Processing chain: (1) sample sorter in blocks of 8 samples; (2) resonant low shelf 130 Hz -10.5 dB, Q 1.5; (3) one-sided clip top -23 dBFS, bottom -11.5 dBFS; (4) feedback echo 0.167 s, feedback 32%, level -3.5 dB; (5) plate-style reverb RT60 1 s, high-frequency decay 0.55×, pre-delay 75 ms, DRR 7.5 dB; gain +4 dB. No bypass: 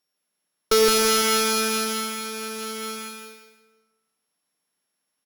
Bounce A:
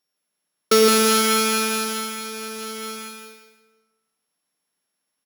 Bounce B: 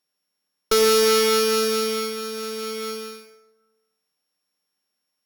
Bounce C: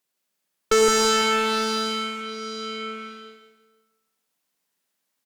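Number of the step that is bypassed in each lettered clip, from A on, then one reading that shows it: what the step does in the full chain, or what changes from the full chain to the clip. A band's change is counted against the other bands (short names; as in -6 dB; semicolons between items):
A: 3, distortion -11 dB; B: 4, echo-to-direct -1.0 dB to -7.5 dB; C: 1, distortion -5 dB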